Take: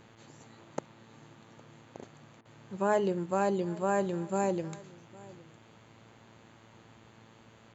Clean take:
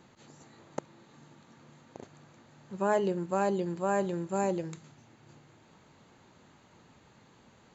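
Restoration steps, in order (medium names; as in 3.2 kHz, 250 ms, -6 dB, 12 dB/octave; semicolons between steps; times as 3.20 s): de-hum 112.2 Hz, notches 32; interpolate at 2.41 s, 41 ms; inverse comb 810 ms -21.5 dB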